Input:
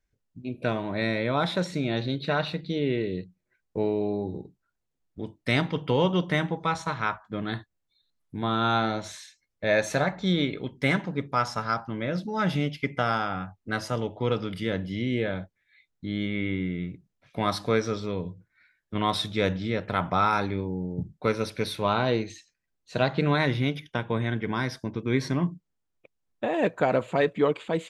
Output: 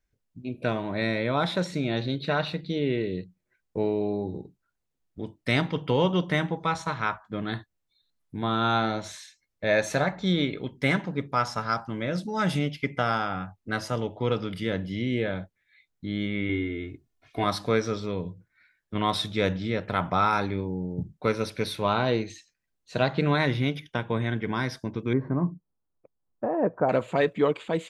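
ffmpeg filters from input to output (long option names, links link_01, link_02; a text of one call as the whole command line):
ffmpeg -i in.wav -filter_complex "[0:a]asettb=1/sr,asplit=3[link_01][link_02][link_03];[link_01]atrim=end=11.714[link_04];[link_02]atrim=start=11.71:end=12.59,asetpts=PTS-STARTPTS,afade=type=in:duration=0.004:curve=qsin,afade=type=out:start_time=0.876:duration=0.004:curve=qsin,equalizer=frequency=8800:width=1.2:gain=12[link_05];[link_03]atrim=start=12.586[link_06];[link_04][link_05]acrossfade=duration=0.004:curve1=hsin:curve2=qsin[link_07];[link_07][link_06]acrossfade=duration=0.004:curve1=qsin:curve2=hsin,asettb=1/sr,asplit=3[link_08][link_09][link_10];[link_08]atrim=end=16.494[link_11];[link_09]atrim=start=16.49:end=17.44,asetpts=PTS-STARTPTS,afade=type=in:duration=0.004:curve=qsin,afade=type=out:start_time=0.946:duration=0.004:curve=qsin,aecho=1:1:2.8:0.84,atrim=end_sample=41895[link_12];[link_10]atrim=start=17.436[link_13];[link_11][link_12]acrossfade=duration=0.004:curve1=hsin:curve2=qsin[link_14];[link_14][link_13]acrossfade=duration=0.004:curve1=qsin:curve2=hsin,asettb=1/sr,asplit=3[link_15][link_16][link_17];[link_15]atrim=end=25.134[link_18];[link_16]atrim=start=25.13:end=26.89,asetpts=PTS-STARTPTS,afade=type=in:duration=0.004:curve=qsin,afade=type=out:start_time=1.756:duration=0.004:curve=qsin,lowpass=frequency=1300:width=0.5412,lowpass=frequency=1300:width=1.3066[link_19];[link_17]atrim=start=26.886[link_20];[link_18][link_19]acrossfade=duration=0.004:curve1=hsin:curve2=qsin[link_21];[link_21][link_20]acrossfade=duration=0.004:curve1=qsin:curve2=hsin" out.wav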